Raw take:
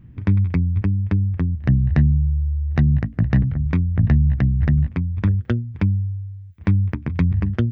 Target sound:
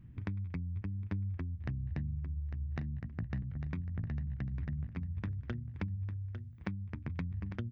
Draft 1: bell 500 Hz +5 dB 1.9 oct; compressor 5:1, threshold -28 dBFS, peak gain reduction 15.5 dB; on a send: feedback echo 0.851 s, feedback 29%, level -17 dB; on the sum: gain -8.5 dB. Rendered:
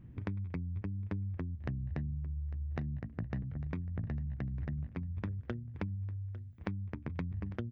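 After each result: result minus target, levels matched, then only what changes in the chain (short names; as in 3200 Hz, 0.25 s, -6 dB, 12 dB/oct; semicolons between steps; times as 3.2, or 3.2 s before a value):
500 Hz band +5.0 dB; echo-to-direct -7 dB
change: bell 500 Hz -3 dB 1.9 oct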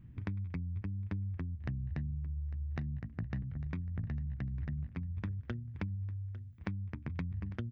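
echo-to-direct -7 dB
change: feedback echo 0.851 s, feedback 29%, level -10 dB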